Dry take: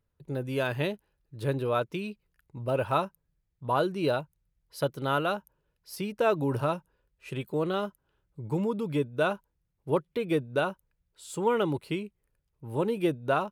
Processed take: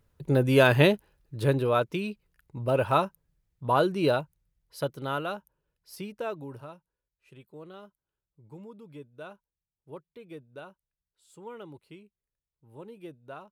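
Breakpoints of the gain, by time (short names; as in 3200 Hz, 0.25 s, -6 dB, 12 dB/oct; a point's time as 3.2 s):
0.91 s +10 dB
1.71 s +3 dB
4.06 s +3 dB
5.26 s -4.5 dB
6.02 s -4.5 dB
6.72 s -17 dB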